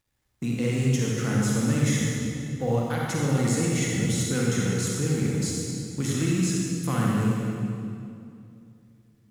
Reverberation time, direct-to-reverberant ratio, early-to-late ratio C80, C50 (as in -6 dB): 2.5 s, -4.0 dB, -1.0 dB, -3.0 dB